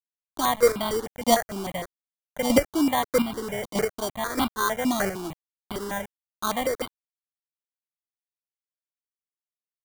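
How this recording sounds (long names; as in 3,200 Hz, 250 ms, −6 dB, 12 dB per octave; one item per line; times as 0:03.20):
a quantiser's noise floor 6 bits, dither none
chopped level 1.6 Hz, depth 60%, duty 15%
aliases and images of a low sample rate 2,600 Hz, jitter 0%
notches that jump at a steady rate 6.6 Hz 430–1,800 Hz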